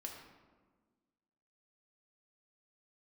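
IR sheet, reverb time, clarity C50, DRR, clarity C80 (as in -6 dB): 1.5 s, 4.0 dB, 0.0 dB, 5.5 dB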